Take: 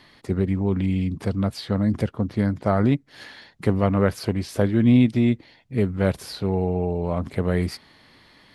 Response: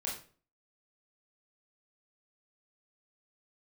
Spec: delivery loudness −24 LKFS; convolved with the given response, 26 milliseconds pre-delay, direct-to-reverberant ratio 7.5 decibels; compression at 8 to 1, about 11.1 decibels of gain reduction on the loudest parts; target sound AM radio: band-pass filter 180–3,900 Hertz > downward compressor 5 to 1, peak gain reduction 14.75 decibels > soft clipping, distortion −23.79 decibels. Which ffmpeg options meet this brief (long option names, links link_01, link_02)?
-filter_complex "[0:a]acompressor=threshold=-23dB:ratio=8,asplit=2[link_01][link_02];[1:a]atrim=start_sample=2205,adelay=26[link_03];[link_02][link_03]afir=irnorm=-1:irlink=0,volume=-9.5dB[link_04];[link_01][link_04]amix=inputs=2:normalize=0,highpass=180,lowpass=3900,acompressor=threshold=-39dB:ratio=5,asoftclip=threshold=-28.5dB,volume=19.5dB"